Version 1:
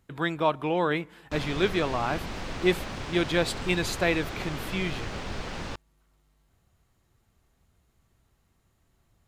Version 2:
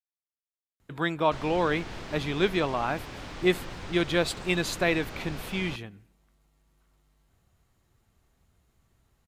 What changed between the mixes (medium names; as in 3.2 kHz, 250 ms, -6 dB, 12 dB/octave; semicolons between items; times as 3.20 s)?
speech: entry +0.80 s; background -4.5 dB